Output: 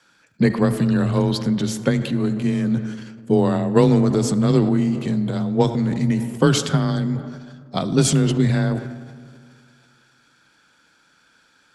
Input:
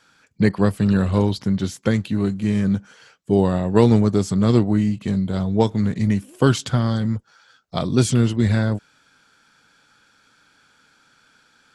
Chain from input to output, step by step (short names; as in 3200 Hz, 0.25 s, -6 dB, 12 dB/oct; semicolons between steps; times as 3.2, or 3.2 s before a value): frequency shift +22 Hz; digital reverb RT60 2.3 s, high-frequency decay 0.45×, pre-delay 30 ms, DRR 14 dB; transient shaper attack +3 dB, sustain +7 dB; gain -1.5 dB